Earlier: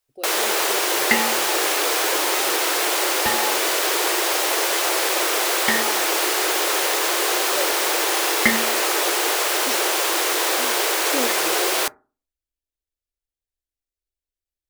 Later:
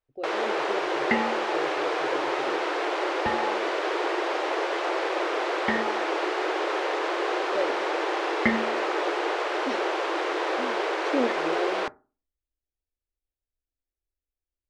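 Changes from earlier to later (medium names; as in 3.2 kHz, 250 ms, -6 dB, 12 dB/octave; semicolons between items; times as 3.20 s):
speech +3.0 dB; second sound: add high-pass 50 Hz; master: add tape spacing loss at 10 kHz 37 dB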